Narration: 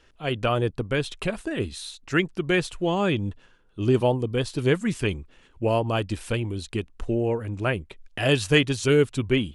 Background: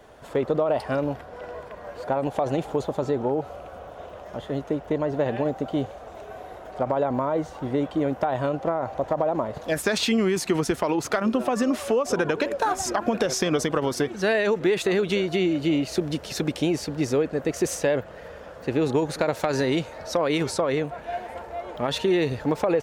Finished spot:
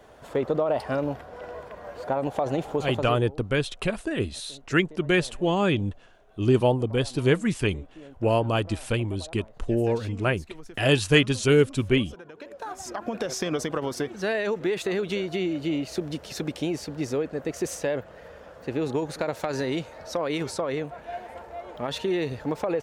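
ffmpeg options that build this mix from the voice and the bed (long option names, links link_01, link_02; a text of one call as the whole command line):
ffmpeg -i stem1.wav -i stem2.wav -filter_complex "[0:a]adelay=2600,volume=0.5dB[link_01];[1:a]volume=15.5dB,afade=type=out:start_time=2.89:duration=0.38:silence=0.1,afade=type=in:start_time=12.32:duration=1.13:silence=0.141254[link_02];[link_01][link_02]amix=inputs=2:normalize=0" out.wav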